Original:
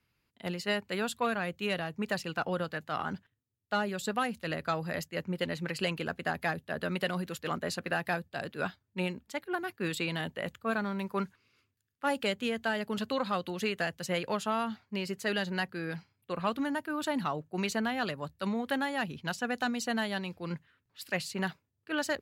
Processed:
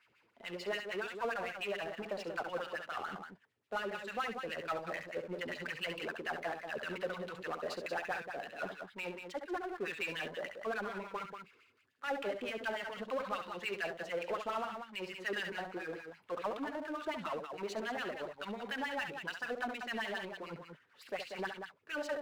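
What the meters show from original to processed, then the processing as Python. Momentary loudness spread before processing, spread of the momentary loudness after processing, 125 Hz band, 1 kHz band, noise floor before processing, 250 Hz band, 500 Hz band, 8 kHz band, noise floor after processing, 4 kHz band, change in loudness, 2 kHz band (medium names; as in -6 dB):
5 LU, 6 LU, -15.5 dB, -5.5 dB, -80 dBFS, -11.5 dB, -4.5 dB, -12.0 dB, -71 dBFS, -7.0 dB, -6.0 dB, -5.0 dB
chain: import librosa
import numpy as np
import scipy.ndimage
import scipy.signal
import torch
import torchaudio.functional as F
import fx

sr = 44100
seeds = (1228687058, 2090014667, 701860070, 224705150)

y = fx.filter_lfo_bandpass(x, sr, shape='sine', hz=6.9, low_hz=400.0, high_hz=2800.0, q=2.4)
y = fx.echo_multitap(y, sr, ms=(68, 187), db=(-10.5, -10.0))
y = fx.power_curve(y, sr, exponent=0.7)
y = y * librosa.db_to_amplitude(-3.0)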